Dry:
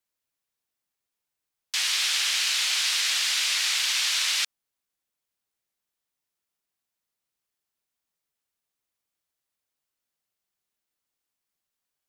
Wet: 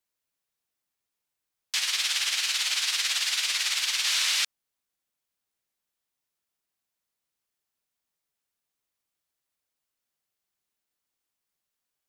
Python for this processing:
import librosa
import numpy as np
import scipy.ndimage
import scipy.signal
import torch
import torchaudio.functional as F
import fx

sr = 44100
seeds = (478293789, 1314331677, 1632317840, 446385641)

y = fx.tremolo(x, sr, hz=18.0, depth=0.52, at=(1.78, 4.07))